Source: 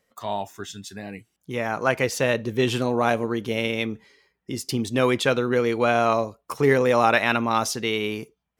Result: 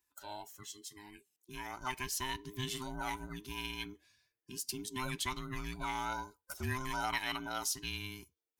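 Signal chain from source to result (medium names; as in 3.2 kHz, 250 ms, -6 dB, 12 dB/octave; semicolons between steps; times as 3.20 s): every band turned upside down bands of 500 Hz; pre-emphasis filter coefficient 0.8; trim -5 dB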